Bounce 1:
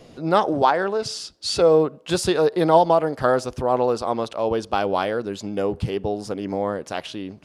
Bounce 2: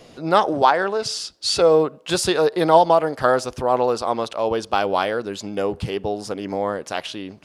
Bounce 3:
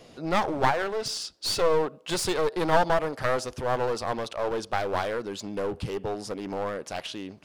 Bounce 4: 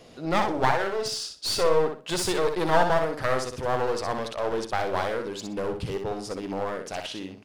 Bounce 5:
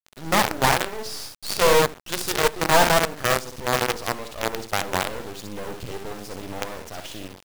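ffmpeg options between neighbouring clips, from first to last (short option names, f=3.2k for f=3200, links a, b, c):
-af "lowshelf=f=500:g=-6.5,volume=4dB"
-af "aeval=exprs='clip(val(0),-1,0.0631)':c=same,volume=-4.5dB"
-af "aecho=1:1:62|124|186:0.501|0.115|0.0265"
-af "acrusher=bits=4:dc=4:mix=0:aa=0.000001,volume=2.5dB"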